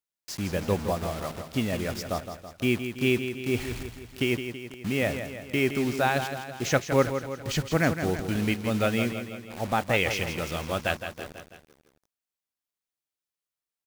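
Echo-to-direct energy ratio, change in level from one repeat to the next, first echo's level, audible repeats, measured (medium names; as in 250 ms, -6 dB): -7.5 dB, -5.0 dB, -9.0 dB, 4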